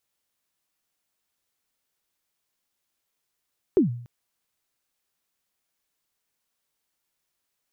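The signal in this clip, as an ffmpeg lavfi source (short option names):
-f lavfi -i "aevalsrc='0.251*pow(10,-3*t/0.58)*sin(2*PI*(420*0.125/log(120/420)*(exp(log(120/420)*min(t,0.125)/0.125)-1)+120*max(t-0.125,0)))':d=0.29:s=44100"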